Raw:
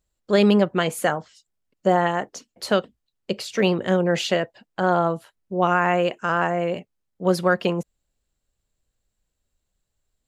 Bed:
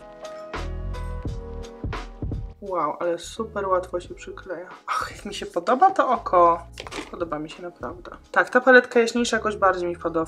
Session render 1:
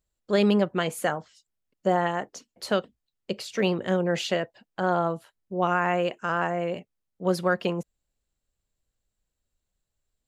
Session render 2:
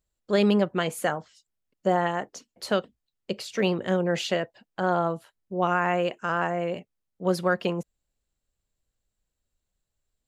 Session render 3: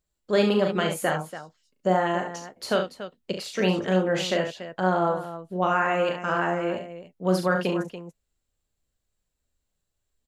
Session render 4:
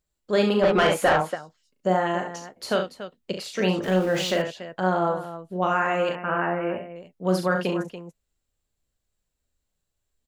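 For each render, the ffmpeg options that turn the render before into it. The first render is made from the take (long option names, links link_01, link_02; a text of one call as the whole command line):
ffmpeg -i in.wav -af "volume=-4.5dB" out.wav
ffmpeg -i in.wav -af anull out.wav
ffmpeg -i in.wav -filter_complex "[0:a]asplit=2[link_01][link_02];[link_02]adelay=12,volume=-13dB[link_03];[link_01][link_03]amix=inputs=2:normalize=0,aecho=1:1:37.9|69.97|285.7:0.501|0.398|0.251" out.wav
ffmpeg -i in.wav -filter_complex "[0:a]asplit=3[link_01][link_02][link_03];[link_01]afade=type=out:start_time=0.62:duration=0.02[link_04];[link_02]asplit=2[link_05][link_06];[link_06]highpass=frequency=720:poles=1,volume=22dB,asoftclip=type=tanh:threshold=-8.5dB[link_07];[link_05][link_07]amix=inputs=2:normalize=0,lowpass=frequency=1600:poles=1,volume=-6dB,afade=type=in:start_time=0.62:duration=0.02,afade=type=out:start_time=1.34:duration=0.02[link_08];[link_03]afade=type=in:start_time=1.34:duration=0.02[link_09];[link_04][link_08][link_09]amix=inputs=3:normalize=0,asettb=1/sr,asplit=3[link_10][link_11][link_12];[link_10]atrim=end=3.834[link_13];[link_11]atrim=start=3.83:end=4.42,asetpts=PTS-STARTPTS,afade=type=in:duration=0.004:curve=qsin,afade=type=out:start_time=0.586:duration=0.004:curve=qsin,aeval=exprs='val(0)+0.5*0.0178*sgn(val(0))':channel_layout=same[link_14];[link_12]atrim=start=4.416[link_15];[link_13][link_14]acrossfade=duration=0.004:curve1=hsin:curve2=qsin[link_16];[link_16][link_15]acrossfade=duration=0.004:curve1=qsin:curve2=hsin,asettb=1/sr,asplit=3[link_17][link_18][link_19];[link_17]atrim=end=6.154[link_20];[link_18]atrim=start=6.15:end=6.96,asetpts=PTS-STARTPTS,afade=type=in:duration=0.004:curve=qsin,afade=type=out:start_time=0.806:duration=0.004:curve=qsin,asuperstop=centerf=5400:order=12:qfactor=0.82[link_21];[link_19]atrim=start=6.956[link_22];[link_20][link_21]acrossfade=duration=0.004:curve1=hsin:curve2=qsin[link_23];[link_23][link_22]acrossfade=duration=0.004:curve1=qsin:curve2=hsin" out.wav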